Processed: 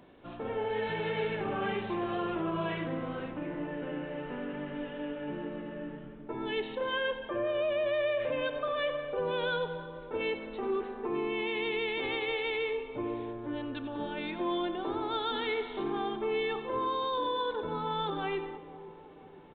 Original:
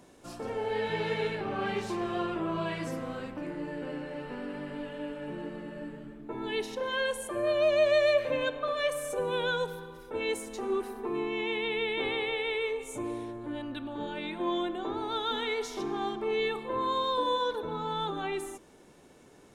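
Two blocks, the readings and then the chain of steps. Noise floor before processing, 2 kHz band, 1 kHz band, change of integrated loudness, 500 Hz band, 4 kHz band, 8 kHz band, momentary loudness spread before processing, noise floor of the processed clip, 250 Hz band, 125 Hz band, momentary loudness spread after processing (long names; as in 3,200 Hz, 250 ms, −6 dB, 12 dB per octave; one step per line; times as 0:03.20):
−56 dBFS, −1.5 dB, −1.0 dB, −2.0 dB, −2.0 dB, −2.5 dB, below −30 dB, 10 LU, −48 dBFS, −0.5 dB, 0.0 dB, 8 LU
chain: brickwall limiter −24 dBFS, peak gain reduction 8.5 dB
on a send: echo with a time of its own for lows and highs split 960 Hz, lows 498 ms, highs 91 ms, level −14 dB
on the sum: downsampling to 8,000 Hz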